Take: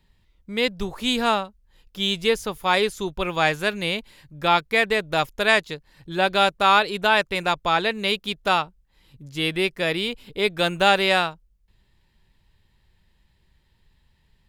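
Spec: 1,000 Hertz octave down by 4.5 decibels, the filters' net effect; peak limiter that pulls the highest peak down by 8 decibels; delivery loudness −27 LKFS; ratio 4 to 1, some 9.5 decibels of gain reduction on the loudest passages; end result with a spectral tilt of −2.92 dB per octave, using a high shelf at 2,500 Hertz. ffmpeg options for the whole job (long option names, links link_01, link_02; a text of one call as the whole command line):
ffmpeg -i in.wav -af "equalizer=frequency=1000:width_type=o:gain=-8,highshelf=frequency=2500:gain=8.5,acompressor=threshold=-24dB:ratio=4,volume=4dB,alimiter=limit=-14.5dB:level=0:latency=1" out.wav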